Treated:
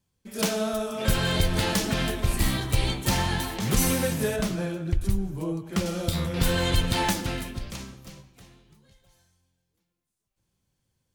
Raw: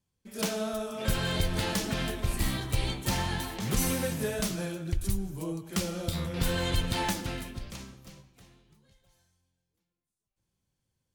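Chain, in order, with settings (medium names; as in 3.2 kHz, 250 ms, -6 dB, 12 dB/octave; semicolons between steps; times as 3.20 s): 4.36–5.86 s: treble shelf 3.7 kHz -10.5 dB; trim +5 dB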